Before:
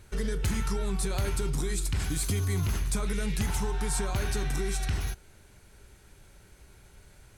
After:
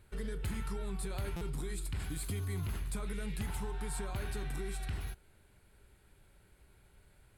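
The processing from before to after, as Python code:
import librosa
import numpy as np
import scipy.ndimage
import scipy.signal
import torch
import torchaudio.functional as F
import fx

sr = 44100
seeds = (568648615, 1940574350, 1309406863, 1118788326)

y = fx.peak_eq(x, sr, hz=6000.0, db=-12.0, octaves=0.47)
y = fx.buffer_glitch(y, sr, at_s=(1.36,), block=256, repeats=8)
y = y * librosa.db_to_amplitude(-8.5)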